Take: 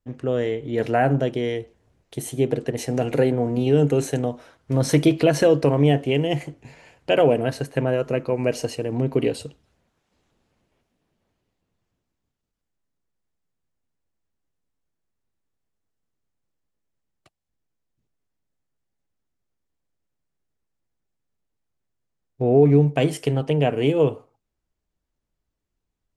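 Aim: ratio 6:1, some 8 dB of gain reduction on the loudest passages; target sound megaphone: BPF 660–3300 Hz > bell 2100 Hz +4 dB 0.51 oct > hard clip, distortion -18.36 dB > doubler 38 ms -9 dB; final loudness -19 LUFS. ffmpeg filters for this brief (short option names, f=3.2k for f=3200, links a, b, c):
-filter_complex "[0:a]acompressor=threshold=-20dB:ratio=6,highpass=660,lowpass=3.3k,equalizer=f=2.1k:t=o:w=0.51:g=4,asoftclip=type=hard:threshold=-23dB,asplit=2[a][b];[b]adelay=38,volume=-9dB[c];[a][c]amix=inputs=2:normalize=0,volume=14.5dB"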